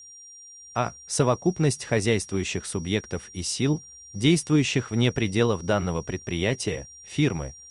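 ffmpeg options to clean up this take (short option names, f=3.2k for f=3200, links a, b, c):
-af "bandreject=f=5.7k:w=30,agate=range=-21dB:threshold=-39dB"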